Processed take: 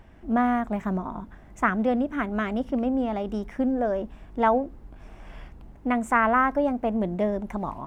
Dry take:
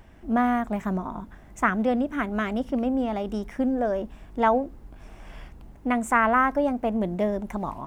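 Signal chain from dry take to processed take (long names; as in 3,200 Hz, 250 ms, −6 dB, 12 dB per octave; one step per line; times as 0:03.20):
high-shelf EQ 4,700 Hz −7.5 dB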